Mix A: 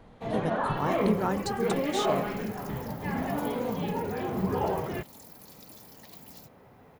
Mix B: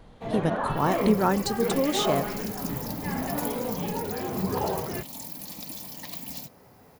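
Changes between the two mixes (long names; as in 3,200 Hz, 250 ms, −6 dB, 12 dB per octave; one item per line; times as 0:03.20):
speech +6.0 dB
second sound +12.0 dB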